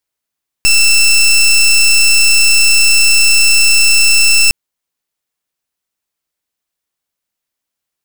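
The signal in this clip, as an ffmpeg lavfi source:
-f lavfi -i "aevalsrc='0.422*(2*lt(mod(2670*t,1),0.18)-1)':d=3.86:s=44100"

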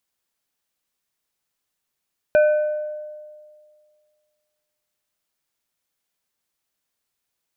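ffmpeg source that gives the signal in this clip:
-f lavfi -i "aevalsrc='0.299*pow(10,-3*t/1.95)*sin(2*PI*605*t)+0.0841*pow(10,-3*t/1.027)*sin(2*PI*1512.5*t)+0.0237*pow(10,-3*t/0.739)*sin(2*PI*2420*t)':d=3.44:s=44100"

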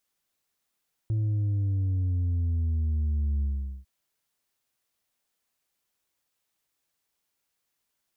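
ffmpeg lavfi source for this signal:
-f lavfi -i "aevalsrc='0.0631*clip((2.75-t)/0.43,0,1)*tanh(1.5*sin(2*PI*110*2.75/log(65/110)*(exp(log(65/110)*t/2.75)-1)))/tanh(1.5)':d=2.75:s=44100"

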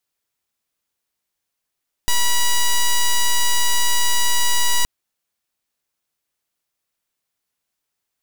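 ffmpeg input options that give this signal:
-f lavfi -i "aevalsrc='0.178*(2*lt(mod(971*t,1),0.06)-1)':d=2.77:s=44100"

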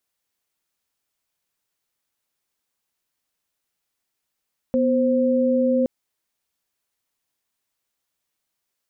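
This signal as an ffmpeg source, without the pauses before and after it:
-f lavfi -i "aevalsrc='0.112*(sin(2*PI*246.94*t)+sin(2*PI*523.25*t))':d=1.12:s=44100"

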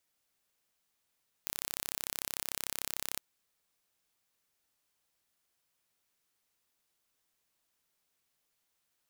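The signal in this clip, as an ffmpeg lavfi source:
-f lavfi -i "aevalsrc='0.398*eq(mod(n,1320),0)':d=1.73:s=44100"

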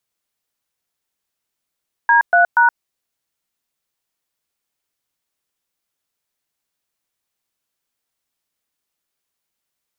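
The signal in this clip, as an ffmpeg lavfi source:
-f lavfi -i "aevalsrc='0.266*clip(min(mod(t,0.239),0.121-mod(t,0.239))/0.002,0,1)*(eq(floor(t/0.239),0)*(sin(2*PI*941*mod(t,0.239))+sin(2*PI*1633*mod(t,0.239)))+eq(floor(t/0.239),1)*(sin(2*PI*697*mod(t,0.239))+sin(2*PI*1477*mod(t,0.239)))+eq(floor(t/0.239),2)*(sin(2*PI*941*mod(t,0.239))+sin(2*PI*1477*mod(t,0.239))))':d=0.717:s=44100"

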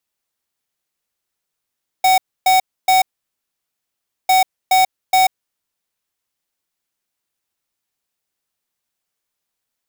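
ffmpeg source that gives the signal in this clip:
-f lavfi -i "aevalsrc='0.251*(2*lt(mod(750*t,1),0.5)-1)*clip(min(mod(mod(t,2.25),0.42),0.14-mod(mod(t,2.25),0.42))/0.005,0,1)*lt(mod(t,2.25),1.26)':d=4.5:s=44100"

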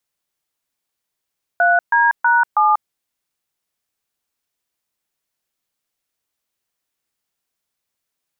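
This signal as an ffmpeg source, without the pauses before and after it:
-f lavfi -i "aevalsrc='0.211*clip(min(mod(t,0.322),0.19-mod(t,0.322))/0.002,0,1)*(eq(floor(t/0.322),0)*(sin(2*PI*697*mod(t,0.322))+sin(2*PI*1477*mod(t,0.322)))+eq(floor(t/0.322),1)*(sin(2*PI*941*mod(t,0.322))+sin(2*PI*1633*mod(t,0.322)))+eq(floor(t/0.322),2)*(sin(2*PI*941*mod(t,0.322))+sin(2*PI*1477*mod(t,0.322)))+eq(floor(t/0.322),3)*(sin(2*PI*852*mod(t,0.322))+sin(2*PI*1209*mod(t,0.322))))':d=1.288:s=44100"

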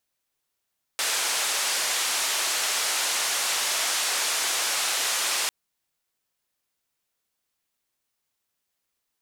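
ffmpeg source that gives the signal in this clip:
-f lavfi -i "anoisesrc=c=white:d=4.5:r=44100:seed=1,highpass=f=600,lowpass=f=8700,volume=-16.9dB"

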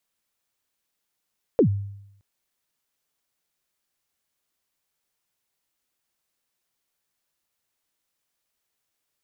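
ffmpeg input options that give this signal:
-f lavfi -i "aevalsrc='0.266*pow(10,-3*t/0.8)*sin(2*PI*(540*0.092/log(100/540)*(exp(log(100/540)*min(t,0.092)/0.092)-1)+100*max(t-0.092,0)))':d=0.62:s=44100"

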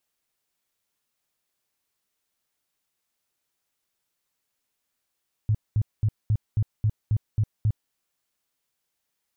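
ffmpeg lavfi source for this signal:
-f lavfi -i "aevalsrc='0.126*sin(2*PI*107*mod(t,0.27))*lt(mod(t,0.27),6/107)':d=2.43:s=44100"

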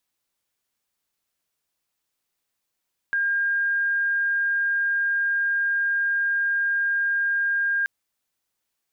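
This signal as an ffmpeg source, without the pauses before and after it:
-f lavfi -i "aevalsrc='0.1*sin(2*PI*1610*t)':d=4.73:s=44100"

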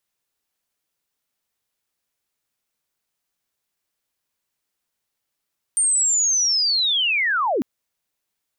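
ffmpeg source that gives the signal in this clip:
-f lavfi -i "aevalsrc='pow(10,(-15.5-2.5*t/1.85)/20)*sin(2*PI*(8900*t-8690*t*t/(2*1.85)))':d=1.85:s=44100"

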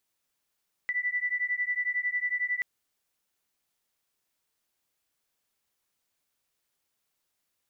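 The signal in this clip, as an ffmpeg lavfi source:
-f lavfi -i "aevalsrc='0.0316*(sin(2*PI*1970*t)+sin(2*PI*1981*t))':d=1.73:s=44100"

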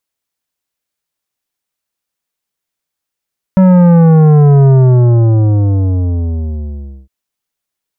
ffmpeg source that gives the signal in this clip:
-f lavfi -i "aevalsrc='0.596*clip((3.51-t)/2.42,0,1)*tanh(3.76*sin(2*PI*190*3.51/log(65/190)*(exp(log(65/190)*t/3.51)-1)))/tanh(3.76)':d=3.51:s=44100"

